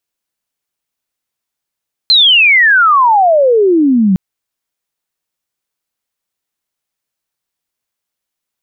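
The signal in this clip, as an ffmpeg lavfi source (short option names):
-f lavfi -i "aevalsrc='pow(10,(-4-2.5*t/2.06)/20)*sin(2*PI*4200*2.06/log(180/4200)*(exp(log(180/4200)*t/2.06)-1))':d=2.06:s=44100"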